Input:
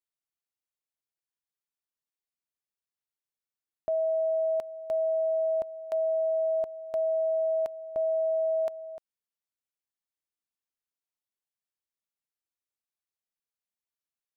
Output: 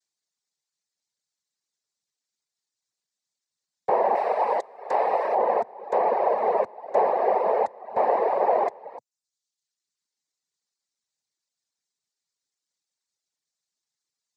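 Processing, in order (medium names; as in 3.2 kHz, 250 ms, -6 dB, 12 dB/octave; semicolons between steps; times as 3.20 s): noise-vocoded speech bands 6; 4.15–5.35 s: tilt EQ +2.5 dB/octave; reverb removal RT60 0.83 s; trim +7 dB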